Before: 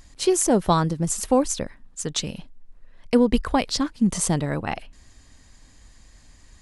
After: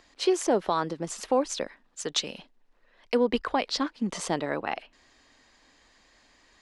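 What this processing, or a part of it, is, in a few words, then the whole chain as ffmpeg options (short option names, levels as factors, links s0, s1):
DJ mixer with the lows and highs turned down: -filter_complex "[0:a]asettb=1/sr,asplit=3[s0][s1][s2];[s0]atrim=end=1.524[s3];[s1]atrim=start=1.52:end=3.17,asetpts=PTS-STARTPTS,afade=t=in:d=0.004:c=qsin,afade=t=out:st=1.646:d=0.004:c=qsin,highshelf=f=4700:g=7[s4];[s2]atrim=start=3.166[s5];[s3][s4]acrossfade=d=0.004:c1=hsin:c2=qsin[s6];[s6][s5]acrossfade=d=0.004:c1=qsin:c2=hsin,acrossover=split=280 5300:gain=0.0891 1 0.112[s7][s8][s9];[s7][s8][s9]amix=inputs=3:normalize=0,alimiter=limit=0.211:level=0:latency=1:release=160"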